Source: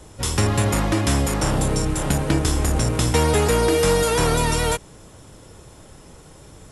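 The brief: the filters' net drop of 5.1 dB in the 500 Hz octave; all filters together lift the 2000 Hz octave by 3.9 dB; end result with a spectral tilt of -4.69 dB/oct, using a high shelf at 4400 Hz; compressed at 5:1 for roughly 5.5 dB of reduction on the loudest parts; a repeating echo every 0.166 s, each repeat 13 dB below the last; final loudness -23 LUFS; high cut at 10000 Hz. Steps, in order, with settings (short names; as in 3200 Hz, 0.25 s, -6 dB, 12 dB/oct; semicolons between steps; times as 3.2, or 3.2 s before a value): LPF 10000 Hz; bell 500 Hz -6 dB; bell 2000 Hz +6 dB; high shelf 4400 Hz -4.5 dB; compressor 5:1, threshold -22 dBFS; feedback echo 0.166 s, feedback 22%, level -13 dB; gain +3 dB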